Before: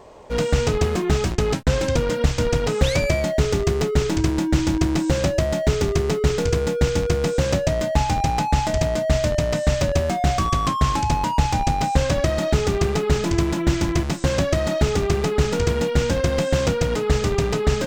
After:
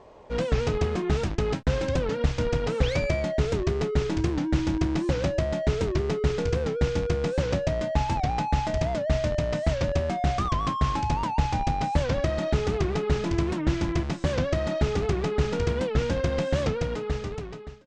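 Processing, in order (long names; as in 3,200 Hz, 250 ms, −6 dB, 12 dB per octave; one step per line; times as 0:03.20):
fade-out on the ending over 1.24 s
high-frequency loss of the air 100 metres
wow of a warped record 78 rpm, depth 160 cents
level −5 dB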